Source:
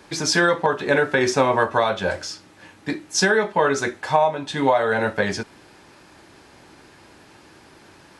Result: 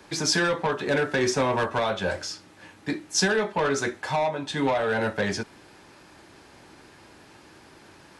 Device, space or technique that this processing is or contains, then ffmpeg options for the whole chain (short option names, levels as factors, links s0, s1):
one-band saturation: -filter_complex "[0:a]acrossover=split=290|3700[s0][s1][s2];[s1]asoftclip=type=tanh:threshold=0.119[s3];[s0][s3][s2]amix=inputs=3:normalize=0,volume=0.794"